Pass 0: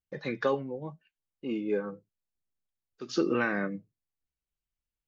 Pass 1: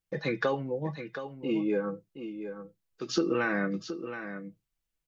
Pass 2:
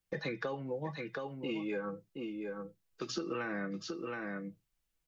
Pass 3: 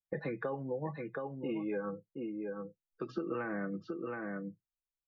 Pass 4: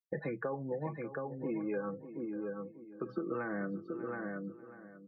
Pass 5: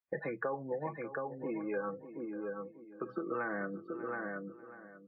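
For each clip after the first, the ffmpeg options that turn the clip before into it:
-af "aecho=1:1:6.1:0.37,acompressor=threshold=-29dB:ratio=3,aecho=1:1:722:0.316,volume=4dB"
-filter_complex "[0:a]acrossover=split=110|720[a][b][c];[a]acompressor=threshold=-59dB:ratio=4[d];[b]acompressor=threshold=-41dB:ratio=4[e];[c]acompressor=threshold=-43dB:ratio=4[f];[d][e][f]amix=inputs=3:normalize=0,volume=2dB"
-af "afftdn=nr=20:nf=-50,lowpass=1.6k,volume=1dB"
-filter_complex "[0:a]bandreject=f=2.8k:w=10,afftdn=nr=23:nf=-50,asplit=2[a][b];[b]adelay=592,lowpass=f=2.7k:p=1,volume=-13dB,asplit=2[c][d];[d]adelay=592,lowpass=f=2.7k:p=1,volume=0.35,asplit=2[e][f];[f]adelay=592,lowpass=f=2.7k:p=1,volume=0.35[g];[a][c][e][g]amix=inputs=4:normalize=0"
-af "lowpass=2.3k,lowshelf=f=370:g=-12,volume=5dB" -ar 48000 -c:a wmav2 -b:a 128k

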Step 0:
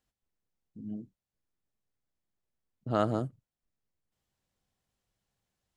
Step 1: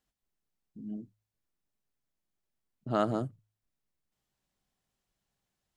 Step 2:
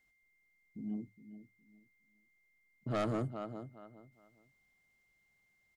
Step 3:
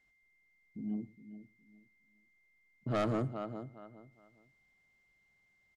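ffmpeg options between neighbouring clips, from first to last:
-af "equalizer=f=95:t=o:w=0.27:g=-11.5,bandreject=f=500:w=12,bandreject=f=53.14:t=h:w=4,bandreject=f=106.28:t=h:w=4"
-filter_complex "[0:a]asplit=2[a][b];[b]adelay=413,lowpass=f=3.4k:p=1,volume=-14dB,asplit=2[c][d];[d]adelay=413,lowpass=f=3.4k:p=1,volume=0.23,asplit=2[e][f];[f]adelay=413,lowpass=f=3.4k:p=1,volume=0.23[g];[a][c][e][g]amix=inputs=4:normalize=0,asoftclip=type=tanh:threshold=-30dB,aeval=exprs='val(0)+0.000224*sin(2*PI*2100*n/s)':c=same,volume=1dB"
-af "adynamicsmooth=sensitivity=7:basefreq=7.8k,aecho=1:1:110:0.075,volume=2dB"

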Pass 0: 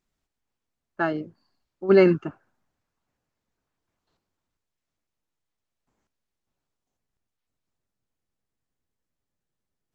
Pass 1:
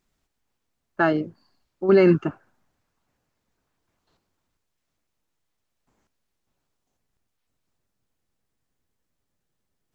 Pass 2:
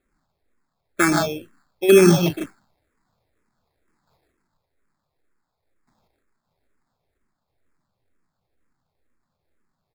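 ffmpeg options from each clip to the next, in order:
-af "alimiter=limit=-14dB:level=0:latency=1:release=36,volume=6dB"
-filter_complex "[0:a]aecho=1:1:119.5|154.5:0.355|0.501,acrusher=samples=15:mix=1:aa=0.000001,asplit=2[a][b];[b]afreqshift=-2.1[c];[a][c]amix=inputs=2:normalize=1,volume=5dB"

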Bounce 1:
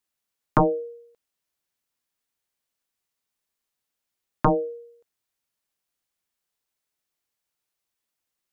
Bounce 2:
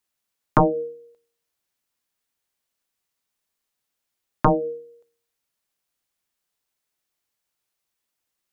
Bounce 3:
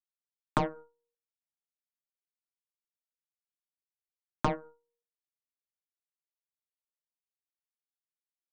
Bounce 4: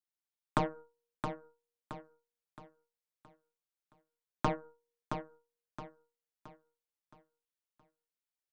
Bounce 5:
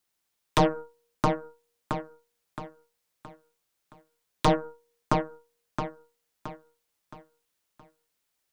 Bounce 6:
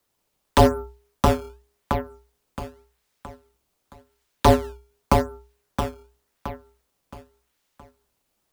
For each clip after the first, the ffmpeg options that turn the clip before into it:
-af "bandreject=f=77.88:t=h:w=4,bandreject=f=155.76:t=h:w=4,bandreject=f=233.64:t=h:w=4,bandreject=f=311.52:t=h:w=4,bandreject=f=389.4:t=h:w=4,bandreject=f=467.28:t=h:w=4,volume=2.5dB"
-af "aeval=exprs='0.447*(cos(1*acos(clip(val(0)/0.447,-1,1)))-cos(1*PI/2))+0.1*(cos(3*acos(clip(val(0)/0.447,-1,1)))-cos(3*PI/2))+0.0282*(cos(5*acos(clip(val(0)/0.447,-1,1)))-cos(5*PI/2))+0.0398*(cos(7*acos(clip(val(0)/0.447,-1,1)))-cos(7*PI/2))+0.00562*(cos(8*acos(clip(val(0)/0.447,-1,1)))-cos(8*PI/2))':c=same,acompressor=threshold=-18dB:ratio=6,volume=-5dB"
-af "aecho=1:1:670|1340|2010|2680|3350:0.447|0.174|0.0679|0.0265|0.0103,volume=-2.5dB"
-af "aeval=exprs='0.2*sin(PI/2*3.98*val(0)/0.2)':c=same,volume=-1dB"
-filter_complex "[0:a]asplit=2[a][b];[b]acrusher=samples=13:mix=1:aa=0.000001:lfo=1:lforange=20.8:lforate=0.88,volume=-4.5dB[c];[a][c]amix=inputs=2:normalize=0,afreqshift=-62,volume=3dB"

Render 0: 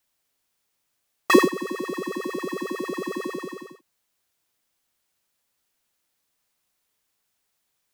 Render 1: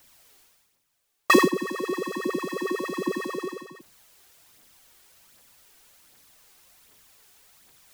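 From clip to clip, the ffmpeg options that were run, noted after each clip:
-af "areverse,acompressor=mode=upward:threshold=-42dB:ratio=2.5,areverse,aphaser=in_gain=1:out_gain=1:delay=2.8:decay=0.42:speed=1.3:type=triangular"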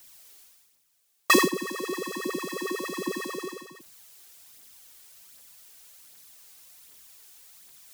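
-af "highshelf=f=3k:g=10,volume=-4dB"

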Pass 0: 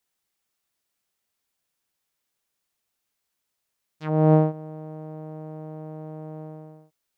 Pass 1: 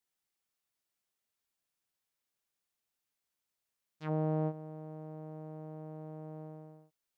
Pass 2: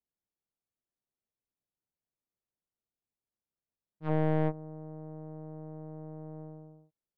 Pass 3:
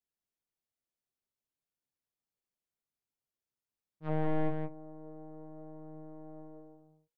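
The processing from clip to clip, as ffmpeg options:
-af "alimiter=limit=-15.5dB:level=0:latency=1:release=24,volume=-8dB"
-af "aeval=exprs='0.0708*(cos(1*acos(clip(val(0)/0.0708,-1,1)))-cos(1*PI/2))+0.00794*(cos(3*acos(clip(val(0)/0.0708,-1,1)))-cos(3*PI/2))+0.0141*(cos(4*acos(clip(val(0)/0.0708,-1,1)))-cos(4*PI/2))':c=same,adynamicsmooth=sensitivity=1:basefreq=680,volume=5dB"
-af "flanger=delay=6.8:depth=2.3:regen=78:speed=0.67:shape=triangular,aecho=1:1:170:0.562,volume=1dB"

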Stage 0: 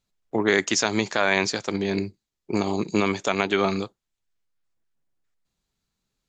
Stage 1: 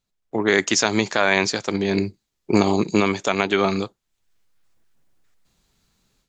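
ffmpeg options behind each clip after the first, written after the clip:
-af "dynaudnorm=f=310:g=3:m=14.5dB,volume=-1dB"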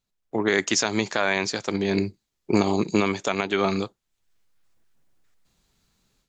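-af "alimiter=limit=-6dB:level=0:latency=1:release=314,volume=-2dB"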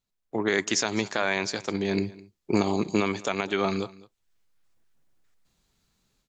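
-af "aecho=1:1:208:0.0891,volume=-3dB"

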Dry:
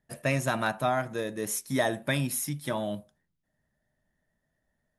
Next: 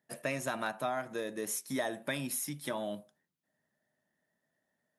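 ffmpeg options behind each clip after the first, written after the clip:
-af "highpass=210,acompressor=threshold=-34dB:ratio=2,volume=-1dB"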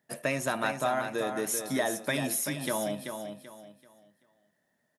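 -af "aecho=1:1:385|770|1155|1540:0.447|0.134|0.0402|0.0121,volume=5dB"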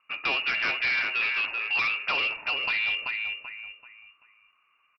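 -af "lowpass=f=2.6k:t=q:w=0.5098,lowpass=f=2.6k:t=q:w=0.6013,lowpass=f=2.6k:t=q:w=0.9,lowpass=f=2.6k:t=q:w=2.563,afreqshift=-3000,aresample=11025,asoftclip=type=tanh:threshold=-31dB,aresample=44100,volume=8.5dB"

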